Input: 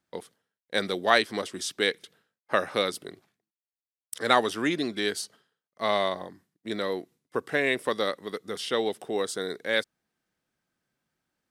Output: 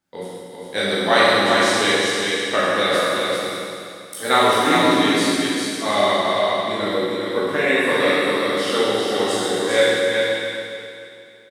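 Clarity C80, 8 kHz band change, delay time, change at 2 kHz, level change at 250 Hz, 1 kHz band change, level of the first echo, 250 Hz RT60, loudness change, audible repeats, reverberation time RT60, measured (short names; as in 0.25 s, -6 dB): -4.5 dB, +11.0 dB, 0.398 s, +10.5 dB, +11.5 dB, +10.5 dB, -3.5 dB, 2.6 s, +9.5 dB, 1, 2.6 s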